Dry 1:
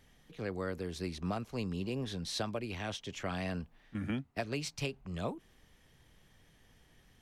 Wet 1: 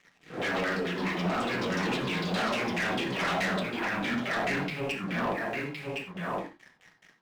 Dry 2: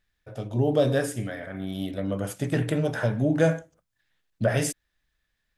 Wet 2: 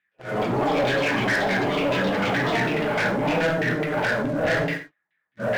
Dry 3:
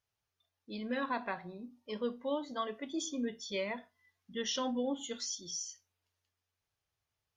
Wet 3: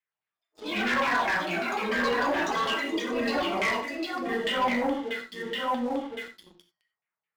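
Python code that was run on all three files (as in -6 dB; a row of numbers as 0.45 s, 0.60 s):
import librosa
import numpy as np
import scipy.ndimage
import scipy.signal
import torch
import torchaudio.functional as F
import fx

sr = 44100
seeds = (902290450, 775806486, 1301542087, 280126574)

p1 = fx.phase_scramble(x, sr, seeds[0], window_ms=200)
p2 = scipy.signal.sosfilt(scipy.signal.butter(4, 140.0, 'highpass', fs=sr, output='sos'), p1)
p3 = fx.peak_eq(p2, sr, hz=2100.0, db=7.5, octaves=0.61)
p4 = p3 + 10.0 ** (-4.5 / 20.0) * np.pad(p3, (int(1064 * sr / 1000.0), 0))[:len(p3)]
p5 = fx.over_compress(p4, sr, threshold_db=-33.0, ratio=-0.5)
p6 = p4 + (p5 * librosa.db_to_amplitude(0.0))
p7 = scipy.signal.sosfilt(scipy.signal.cheby1(6, 3, 5100.0, 'lowpass', fs=sr, output='sos'), p6)
p8 = fx.filter_lfo_lowpass(p7, sr, shape='saw_down', hz=4.7, low_hz=710.0, high_hz=2900.0, q=2.6)
p9 = fx.echo_pitch(p8, sr, ms=116, semitones=6, count=2, db_per_echo=-6.0)
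p10 = fx.leveller(p9, sr, passes=3)
p11 = fx.rev_gated(p10, sr, seeds[1], gate_ms=110, shape='flat', drr_db=7.5)
y = p11 * librosa.db_to_amplitude(-8.0)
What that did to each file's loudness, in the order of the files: +8.0 LU, +3.5 LU, +10.0 LU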